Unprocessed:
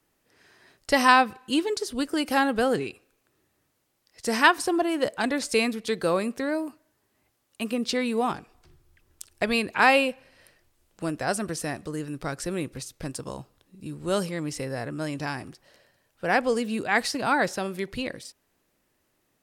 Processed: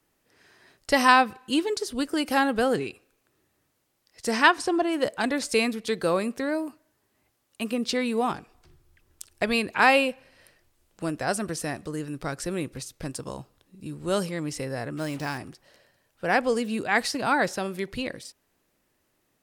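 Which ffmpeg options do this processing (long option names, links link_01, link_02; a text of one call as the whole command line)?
ffmpeg -i in.wav -filter_complex "[0:a]asettb=1/sr,asplit=3[link_01][link_02][link_03];[link_01]atrim=end=4.314[link_04];[link_02]atrim=start=4.31:end=4.93,asetpts=PTS-STARTPTS,afade=type=in:duration=0.004:curve=qsin,afade=type=out:start_time=0.616:duration=0.004:curve=qsin,lowpass=7900[link_05];[link_03]atrim=start=4.926[link_06];[link_04][link_05]acrossfade=duration=0.004:curve1=hsin:curve2=qsin[link_07];[link_07][link_06]acrossfade=duration=0.004:curve1=qsin:curve2=hsin,asettb=1/sr,asplit=3[link_08][link_09][link_10];[link_08]atrim=end=14.974[link_11];[link_09]atrim=start=14.97:end=15.38,asetpts=PTS-STARTPTS,afade=type=in:duration=0.004:curve=qsin,afade=type=out:start_time=0.406:duration=0.004:curve=qsin,acrusher=bits=6:mix=0:aa=0.5[link_12];[link_10]atrim=start=15.376[link_13];[link_11][link_12]acrossfade=duration=0.004:curve1=hsin:curve2=qsin[link_14];[link_14][link_13]acrossfade=duration=0.004:curve1=qsin:curve2=hsin" out.wav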